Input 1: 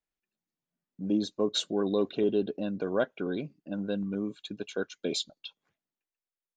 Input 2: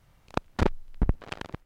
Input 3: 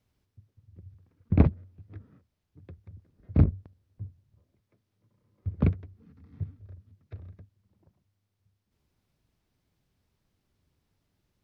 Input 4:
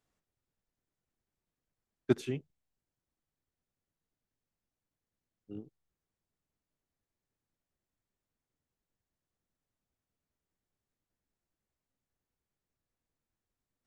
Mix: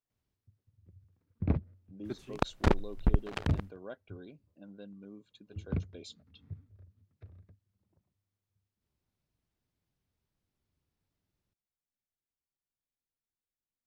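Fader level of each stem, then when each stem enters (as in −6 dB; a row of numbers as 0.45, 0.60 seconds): −17.0, −1.0, −9.5, −13.0 decibels; 0.90, 2.05, 0.10, 0.00 seconds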